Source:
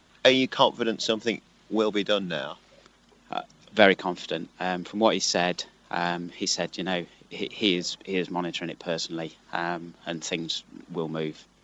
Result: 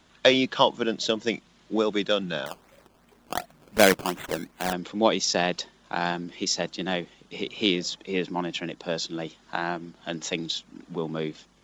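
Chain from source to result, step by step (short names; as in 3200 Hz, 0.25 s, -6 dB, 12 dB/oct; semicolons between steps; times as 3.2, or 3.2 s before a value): 2.46–4.73 decimation with a swept rate 16×, swing 100% 2.7 Hz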